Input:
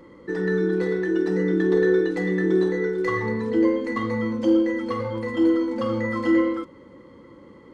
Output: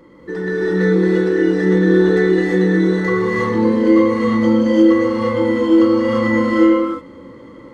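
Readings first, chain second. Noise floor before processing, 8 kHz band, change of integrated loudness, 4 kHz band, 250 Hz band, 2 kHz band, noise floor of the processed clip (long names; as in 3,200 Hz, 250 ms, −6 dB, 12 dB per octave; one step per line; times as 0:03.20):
−48 dBFS, can't be measured, +8.0 dB, +9.0 dB, +8.5 dB, +7.5 dB, −39 dBFS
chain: reverb whose tail is shaped and stops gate 380 ms rising, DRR −7 dB
level +1 dB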